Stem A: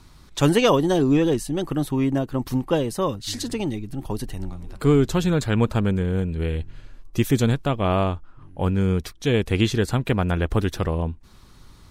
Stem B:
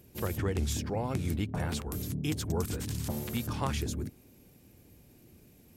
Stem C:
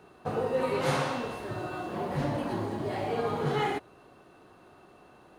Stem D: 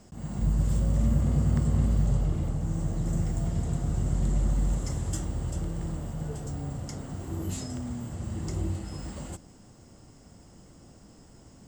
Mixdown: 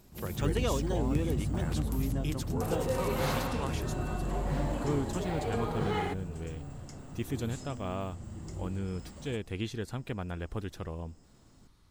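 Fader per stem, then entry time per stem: -15.0, -4.5, -4.0, -9.0 dB; 0.00, 0.00, 2.35, 0.00 s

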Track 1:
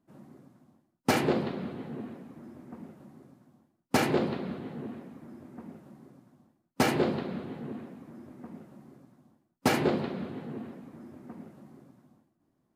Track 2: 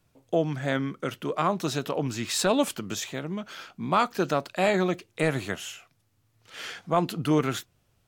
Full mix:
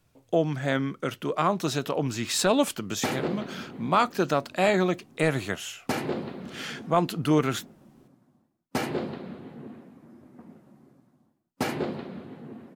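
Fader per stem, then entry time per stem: -3.5, +1.0 dB; 1.95, 0.00 s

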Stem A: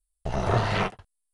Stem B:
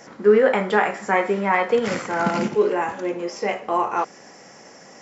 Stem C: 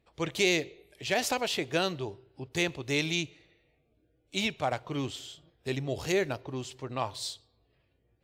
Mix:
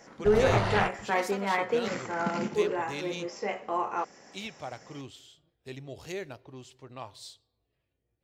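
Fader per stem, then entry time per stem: -3.0, -8.5, -9.5 dB; 0.00, 0.00, 0.00 s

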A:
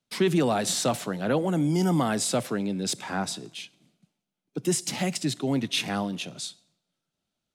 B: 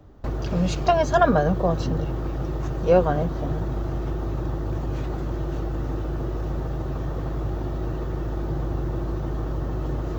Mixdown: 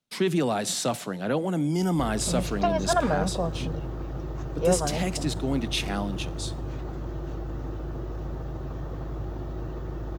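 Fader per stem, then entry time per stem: -1.5, -6.0 dB; 0.00, 1.75 s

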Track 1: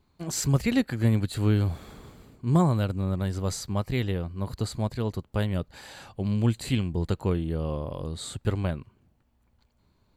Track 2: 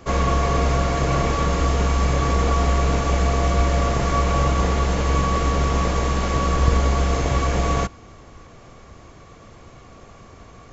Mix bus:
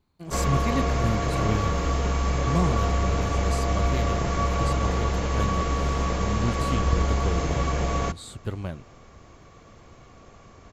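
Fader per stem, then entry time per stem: -4.5, -5.0 dB; 0.00, 0.25 s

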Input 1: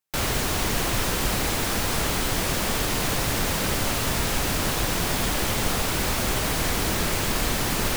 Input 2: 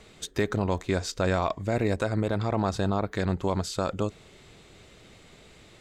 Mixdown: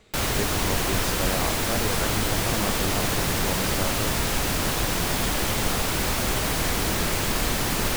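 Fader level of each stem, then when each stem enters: 0.0, -4.5 dB; 0.00, 0.00 s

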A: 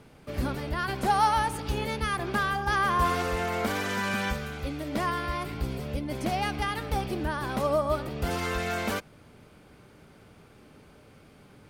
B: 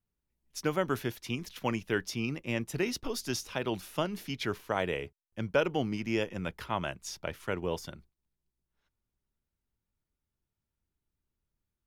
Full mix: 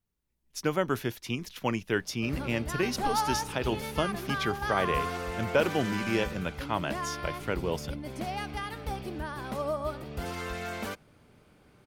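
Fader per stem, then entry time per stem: -6.0, +2.0 dB; 1.95, 0.00 s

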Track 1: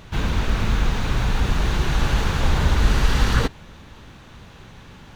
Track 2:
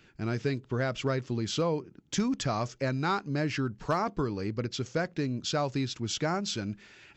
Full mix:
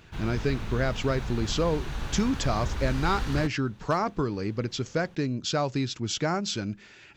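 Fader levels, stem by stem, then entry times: -13.0, +2.5 dB; 0.00, 0.00 s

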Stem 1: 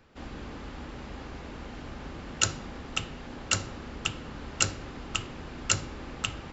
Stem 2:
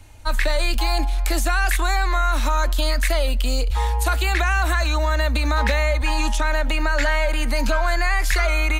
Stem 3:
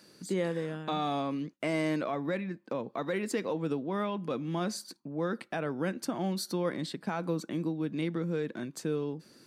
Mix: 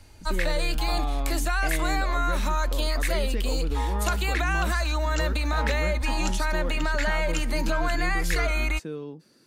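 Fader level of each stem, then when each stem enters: -10.5, -5.5, -3.0 dB; 1.65, 0.00, 0.00 s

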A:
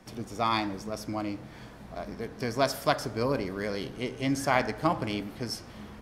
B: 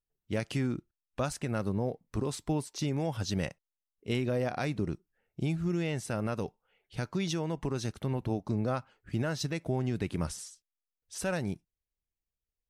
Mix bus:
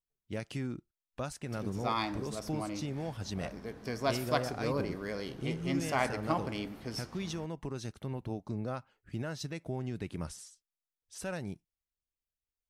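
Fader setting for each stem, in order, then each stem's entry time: -5.5, -6.0 dB; 1.45, 0.00 s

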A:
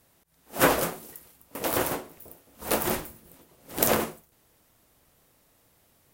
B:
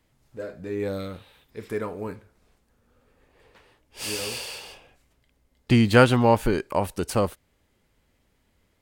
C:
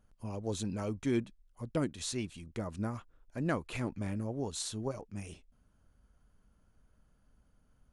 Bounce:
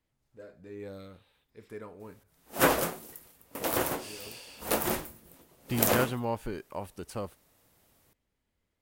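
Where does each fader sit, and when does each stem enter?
-2.5 dB, -13.5 dB, off; 2.00 s, 0.00 s, off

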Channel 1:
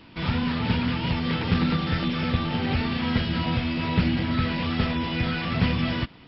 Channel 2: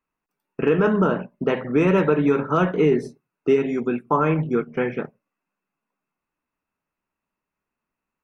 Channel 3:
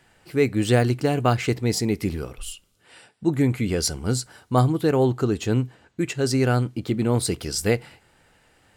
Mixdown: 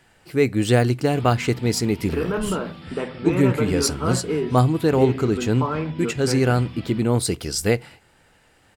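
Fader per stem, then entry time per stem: -14.0, -6.0, +1.5 dB; 0.95, 1.50, 0.00 s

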